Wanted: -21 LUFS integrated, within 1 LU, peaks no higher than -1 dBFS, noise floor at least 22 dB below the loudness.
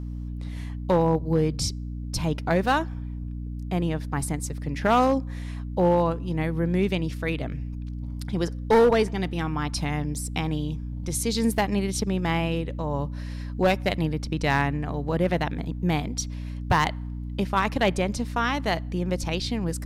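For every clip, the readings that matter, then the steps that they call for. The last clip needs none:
clipped 0.5%; flat tops at -13.5 dBFS; hum 60 Hz; harmonics up to 300 Hz; hum level -30 dBFS; loudness -26.0 LUFS; peak -13.5 dBFS; loudness target -21.0 LUFS
-> clip repair -13.5 dBFS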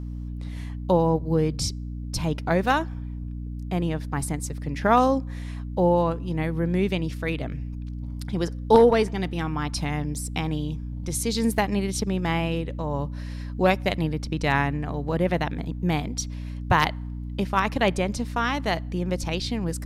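clipped 0.0%; hum 60 Hz; harmonics up to 300 Hz; hum level -30 dBFS
-> de-hum 60 Hz, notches 5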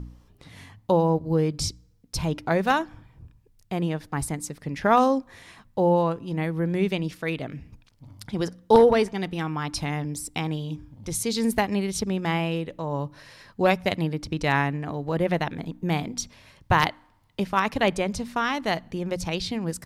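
hum none; loudness -25.5 LUFS; peak -4.0 dBFS; loudness target -21.0 LUFS
-> gain +4.5 dB; limiter -1 dBFS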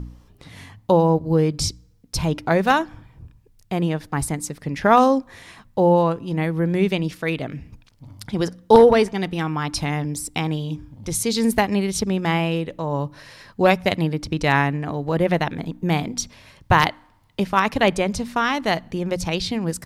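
loudness -21.0 LUFS; peak -1.0 dBFS; noise floor -56 dBFS

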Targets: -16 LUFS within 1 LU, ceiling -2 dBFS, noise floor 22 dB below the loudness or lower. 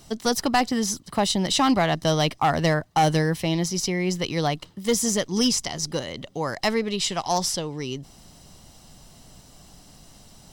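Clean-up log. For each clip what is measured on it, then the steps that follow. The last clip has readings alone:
clipped 0.3%; flat tops at -13.5 dBFS; loudness -24.0 LUFS; peak -13.5 dBFS; loudness target -16.0 LUFS
-> clip repair -13.5 dBFS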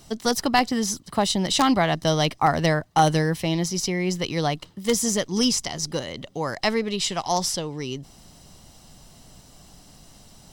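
clipped 0.0%; loudness -23.5 LUFS; peak -4.5 dBFS; loudness target -16.0 LUFS
-> gain +7.5 dB; limiter -2 dBFS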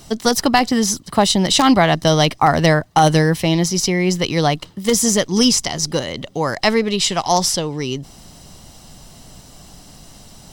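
loudness -16.5 LUFS; peak -2.0 dBFS; noise floor -44 dBFS

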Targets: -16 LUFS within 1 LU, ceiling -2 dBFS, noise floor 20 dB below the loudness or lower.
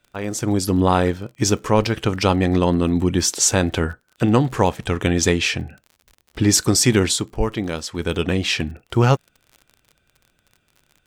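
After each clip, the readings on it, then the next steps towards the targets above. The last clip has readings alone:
ticks 46/s; loudness -19.5 LUFS; peak -2.5 dBFS; loudness target -16.0 LUFS
-> de-click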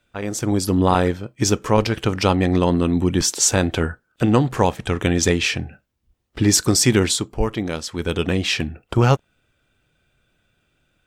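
ticks 0.45/s; loudness -19.5 LUFS; peak -2.5 dBFS; loudness target -16.0 LUFS
-> gain +3.5 dB; limiter -2 dBFS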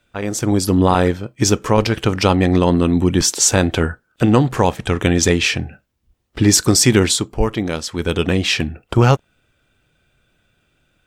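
loudness -16.5 LUFS; peak -2.0 dBFS; noise floor -66 dBFS

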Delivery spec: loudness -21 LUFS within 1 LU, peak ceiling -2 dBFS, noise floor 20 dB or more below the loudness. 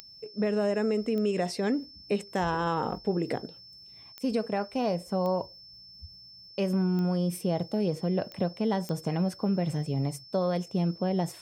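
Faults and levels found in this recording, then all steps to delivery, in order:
clicks 7; steady tone 5300 Hz; tone level -48 dBFS; loudness -29.5 LUFS; peak -16.0 dBFS; loudness target -21.0 LUFS
-> de-click; notch 5300 Hz, Q 30; gain +8.5 dB

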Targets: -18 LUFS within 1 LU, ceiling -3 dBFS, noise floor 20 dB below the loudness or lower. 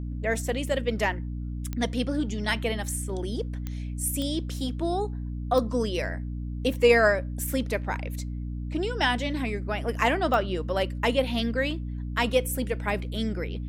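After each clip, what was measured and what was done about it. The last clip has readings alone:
clicks 5; hum 60 Hz; harmonics up to 300 Hz; hum level -30 dBFS; loudness -27.5 LUFS; peak -8.0 dBFS; loudness target -18.0 LUFS
-> de-click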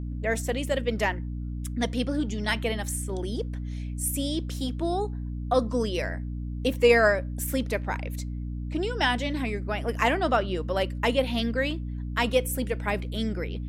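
clicks 0; hum 60 Hz; harmonics up to 300 Hz; hum level -30 dBFS
-> notches 60/120/180/240/300 Hz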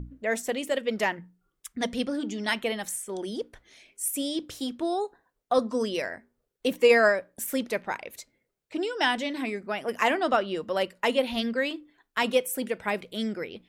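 hum none; loudness -28.0 LUFS; peak -8.5 dBFS; loudness target -18.0 LUFS
-> gain +10 dB; limiter -3 dBFS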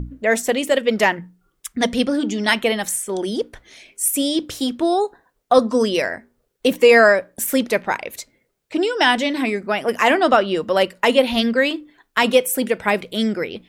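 loudness -18.5 LUFS; peak -3.0 dBFS; noise floor -69 dBFS

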